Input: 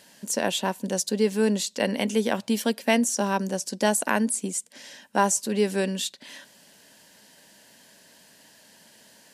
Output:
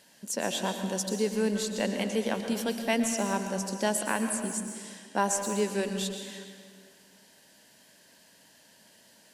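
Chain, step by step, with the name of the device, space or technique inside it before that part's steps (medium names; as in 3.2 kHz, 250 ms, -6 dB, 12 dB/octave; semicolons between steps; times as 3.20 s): saturated reverb return (on a send at -4.5 dB: reverberation RT60 1.8 s, pre-delay 106 ms + saturation -17.5 dBFS, distortion -17 dB); on the sum: trim -5.5 dB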